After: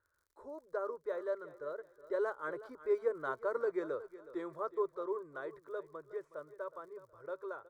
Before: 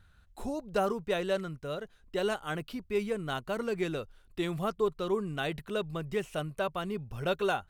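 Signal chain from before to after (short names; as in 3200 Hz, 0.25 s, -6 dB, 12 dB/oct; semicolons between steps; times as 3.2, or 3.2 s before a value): Doppler pass-by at 3.17, 7 m/s, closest 7.9 m; band-pass 740 Hz, Q 1.4; crackle 59/s -62 dBFS; fixed phaser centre 750 Hz, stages 6; feedback echo 0.368 s, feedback 32%, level -16 dB; gain +5.5 dB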